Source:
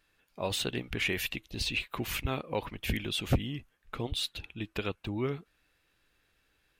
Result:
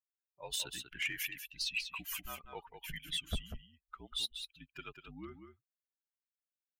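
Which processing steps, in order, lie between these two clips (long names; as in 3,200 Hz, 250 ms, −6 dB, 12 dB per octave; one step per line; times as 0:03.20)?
spectral dynamics exaggerated over time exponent 2
guitar amp tone stack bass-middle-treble 5-5-5
in parallel at −6 dB: soft clipping −39.5 dBFS, distortion −13 dB
on the sum: frequency shifter −55 Hz
wave folding −30.5 dBFS
on a send: single-tap delay 192 ms −8 dB
on the sum: level +4.5 dB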